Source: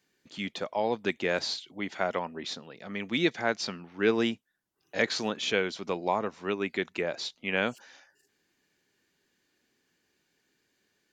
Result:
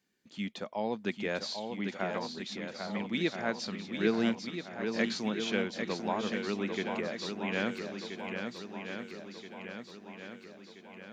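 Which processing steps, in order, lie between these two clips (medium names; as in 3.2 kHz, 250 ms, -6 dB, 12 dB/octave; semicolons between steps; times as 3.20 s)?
peaking EQ 210 Hz +8.5 dB 0.44 oct; shuffle delay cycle 1327 ms, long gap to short 1.5:1, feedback 52%, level -6 dB; trim -6 dB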